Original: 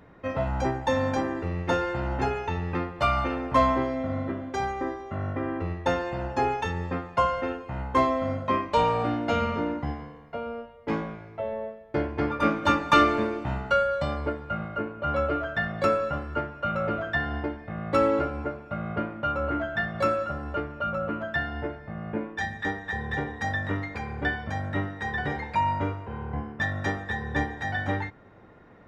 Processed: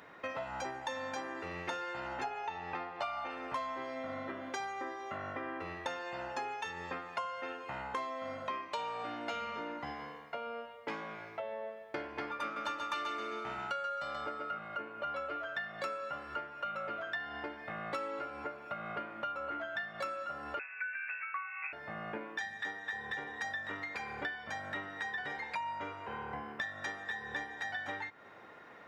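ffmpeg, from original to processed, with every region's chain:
-filter_complex "[0:a]asettb=1/sr,asplit=3[s0][s1][s2];[s0]atrim=end=2.244[s3];[s1]atrim=start=2.24:end=3.31,asetpts=PTS-STARTPTS,afade=t=in:d=0.004:c=qsin,afade=t=out:st=1.066:d=0.004:c=qsin,lowpass=6500,equalizer=f=770:w=2.9:g=10.5[s4];[s2]atrim=start=3.306[s5];[s3][s4]acrossfade=d=0.004:c1=hsin:c2=qsin[s6];[s6][s5]acrossfade=d=0.004:c1=qsin:c2=hsin,asettb=1/sr,asplit=3[s7][s8][s9];[s7]atrim=end=12.434[s10];[s8]atrim=start=12.43:end=14.59,asetpts=PTS-STARTPTS,afade=t=in:d=0.004:c=qsin,afade=t=out:st=2.156:d=0.004:c=qsin,aeval=exprs='val(0)+0.0282*sin(2*PI*1300*n/s)':c=same,aecho=1:1:132|264|396|528:0.562|0.191|0.065|0.0221,atrim=end_sample=95256[s11];[s9]atrim=start=14.586[s12];[s10][s11]acrossfade=d=0.004:c1=hsin:c2=qsin[s13];[s13][s12]acrossfade=d=0.004:c1=qsin:c2=hsin,asettb=1/sr,asplit=3[s14][s15][s16];[s14]atrim=end=20.594[s17];[s15]atrim=start=20.59:end=21.73,asetpts=PTS-STARTPTS,afade=t=in:d=0.004:c=qsin,afade=t=out:st=1.136:d=0.004:c=qsin,highpass=f=280:w=0.5412,highpass=f=280:w=1.3066,equalizer=f=500:w=1.6:g=-13.5,lowpass=f=2500:t=q:w=0.5098,lowpass=f=2500:t=q:w=0.6013,lowpass=f=2500:t=q:w=0.9,lowpass=f=2500:t=q:w=2.563,afreqshift=-2900[s18];[s16]atrim=start=21.726[s19];[s17][s18]acrossfade=d=0.004:c1=hsin:c2=qsin[s20];[s20][s19]acrossfade=d=0.004:c1=qsin:c2=hsin,highpass=f=1400:p=1,acompressor=threshold=0.00562:ratio=5,volume=2.24"

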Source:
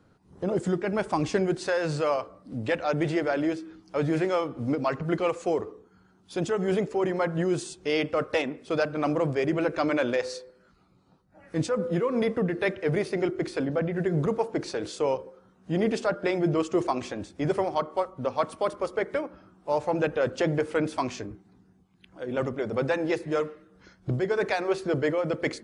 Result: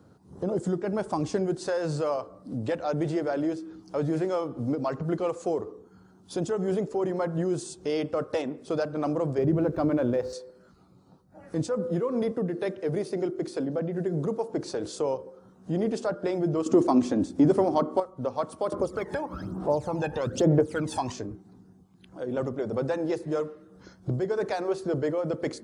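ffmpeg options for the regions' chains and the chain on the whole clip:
-filter_complex "[0:a]asettb=1/sr,asplit=3[s0][s1][s2];[s0]atrim=end=9.384[s3];[s1]atrim=start=9.38:end=10.33,asetpts=PTS-STARTPTS,afade=t=in:d=0.004:c=qsin,afade=t=out:st=0.946:d=0.004:c=qsin,aemphasis=mode=reproduction:type=riaa,aeval=exprs='sgn(val(0))*max(abs(val(0))-0.00178,0)':c=same[s4];[s2]atrim=start=10.326[s5];[s3][s4]acrossfade=d=0.004:c1=hsin:c2=qsin[s6];[s6][s5]acrossfade=d=0.004:c1=qsin:c2=hsin,asettb=1/sr,asplit=3[s7][s8][s9];[s7]atrim=end=12.314[s10];[s8]atrim=start=12.31:end=14.5,asetpts=PTS-STARTPTS,afade=t=in:d=0.004:c=qsin,afade=t=out:st=2.186:d=0.004:c=qsin,highpass=150,equalizer=f=1200:t=o:w=2.3:g=-3[s11];[s9]atrim=start=14.496[s12];[s10][s11]acrossfade=d=0.004:c1=hsin:c2=qsin[s13];[s13][s12]acrossfade=d=0.004:c1=qsin:c2=hsin,asettb=1/sr,asplit=3[s14][s15][s16];[s14]atrim=end=16.664[s17];[s15]atrim=start=16.66:end=18,asetpts=PTS-STARTPTS,afade=t=in:d=0.004:c=qsin,afade=t=out:st=1.336:d=0.004:c=qsin,equalizer=f=260:w=2.3:g=13,acontrast=74[s18];[s16]atrim=start=17.996[s19];[s17][s18]acrossfade=d=0.004:c1=hsin:c2=qsin[s20];[s20][s19]acrossfade=d=0.004:c1=qsin:c2=hsin,asettb=1/sr,asplit=3[s21][s22][s23];[s21]atrim=end=18.724[s24];[s22]atrim=start=18.72:end=21.12,asetpts=PTS-STARTPTS,afade=t=in:d=0.004:c=qsin,afade=t=out:st=2.396:d=0.004:c=qsin,aphaser=in_gain=1:out_gain=1:delay=1.2:decay=0.73:speed=1.1:type=sinusoidal,acompressor=mode=upward:threshold=0.0631:ratio=2.5:attack=3.2:release=140:knee=2.83:detection=peak[s25];[s23]atrim=start=21.116[s26];[s24][s25]acrossfade=d=0.004:c1=hsin:c2=qsin[s27];[s27][s26]acrossfade=d=0.004:c1=qsin:c2=hsin,highpass=63,equalizer=f=2300:t=o:w=1.4:g=-11,acompressor=threshold=0.00708:ratio=1.5,volume=2"

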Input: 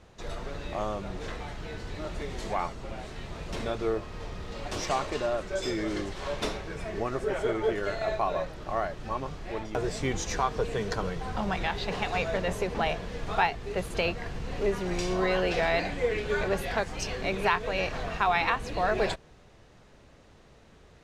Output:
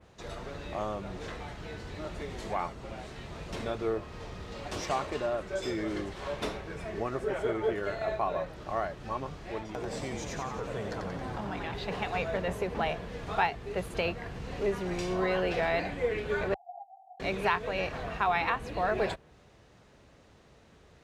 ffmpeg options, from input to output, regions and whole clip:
-filter_complex "[0:a]asettb=1/sr,asplit=3[s0][s1][s2];[s0]atrim=end=9.604[s3];[s1]atrim=start=9.6:end=11.74,asetpts=PTS-STARTPTS,afade=t=in:d=0.004:c=qsin,afade=t=out:st=2.136:d=0.004:c=qsin,acompressor=threshold=0.0251:ratio=3:attack=3.2:release=140:knee=1:detection=peak,asplit=9[s4][s5][s6][s7][s8][s9][s10][s11][s12];[s5]adelay=90,afreqshift=91,volume=0.596[s13];[s6]adelay=180,afreqshift=182,volume=0.339[s14];[s7]adelay=270,afreqshift=273,volume=0.193[s15];[s8]adelay=360,afreqshift=364,volume=0.111[s16];[s9]adelay=450,afreqshift=455,volume=0.0631[s17];[s10]adelay=540,afreqshift=546,volume=0.0359[s18];[s11]adelay=630,afreqshift=637,volume=0.0204[s19];[s12]adelay=720,afreqshift=728,volume=0.0116[s20];[s4][s13][s14][s15][s16][s17][s18][s19][s20]amix=inputs=9:normalize=0,atrim=end_sample=94374[s21];[s2]atrim=start=11.736[s22];[s3][s21]acrossfade=d=0.004:c1=hsin:c2=qsin[s23];[s23][s22]acrossfade=d=0.004:c1=qsin:c2=hsin,asettb=1/sr,asplit=3[s24][s25][s26];[s24]atrim=end=16.544[s27];[s25]atrim=start=16.54:end=17.2,asetpts=PTS-STARTPTS,afade=t=in:d=0.004:c=qsin,afade=t=out:st=0.656:d=0.004:c=qsin,acompressor=threshold=0.0224:ratio=1.5:attack=3.2:release=140:knee=1:detection=peak,asuperpass=centerf=750:order=8:qfactor=6.2[s28];[s26]atrim=start=17.196[s29];[s27][s28]acrossfade=d=0.004:c1=hsin:c2=qsin[s30];[s30][s29]acrossfade=d=0.004:c1=qsin:c2=hsin,highpass=45,adynamicequalizer=threshold=0.00282:dfrequency=5900:dqfactor=0.75:tfrequency=5900:tqfactor=0.75:attack=5:release=100:ratio=0.375:range=3.5:mode=cutabove:tftype=bell,volume=0.794"

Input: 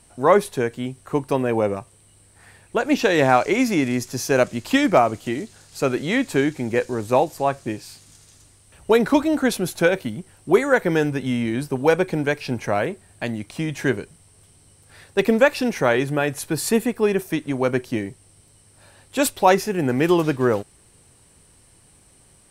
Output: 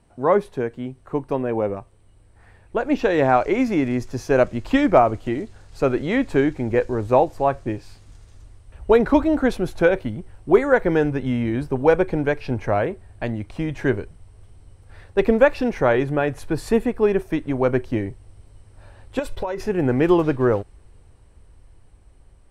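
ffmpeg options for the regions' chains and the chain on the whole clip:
-filter_complex "[0:a]asettb=1/sr,asplit=3[s0][s1][s2];[s0]atrim=end=19.194[s3];[s1]atrim=start=19.19:end=19.6,asetpts=PTS-STARTPTS,afade=t=in:d=0.004:c=qsin,afade=t=out:st=0.406:d=0.004:c=qsin,agate=range=0.0224:threshold=0.0112:ratio=3:release=100:detection=peak,aecho=1:1:2:0.49,atrim=end_sample=18081,acompressor=threshold=0.0631:ratio=16:attack=3.2:release=140:knee=1:detection=peak[s4];[s2]atrim=start=19.596[s5];[s3][s4]acrossfade=d=0.004:c1=hsin:c2=qsin[s6];[s6][s5]acrossfade=d=0.004:c1=qsin:c2=hsin,asubboost=boost=7.5:cutoff=58,lowpass=f=1100:p=1,dynaudnorm=f=710:g=9:m=3.76,volume=0.891"

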